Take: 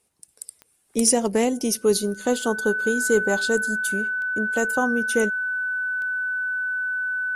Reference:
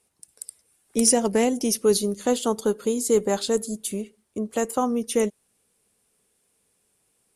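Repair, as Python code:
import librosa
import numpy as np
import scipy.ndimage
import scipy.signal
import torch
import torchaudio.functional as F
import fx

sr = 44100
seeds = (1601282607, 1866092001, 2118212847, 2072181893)

y = fx.fix_declick_ar(x, sr, threshold=10.0)
y = fx.notch(y, sr, hz=1500.0, q=30.0)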